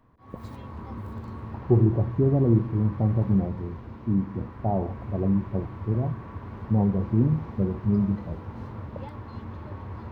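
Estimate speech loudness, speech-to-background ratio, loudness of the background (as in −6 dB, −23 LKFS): −25.5 LKFS, 13.5 dB, −39.0 LKFS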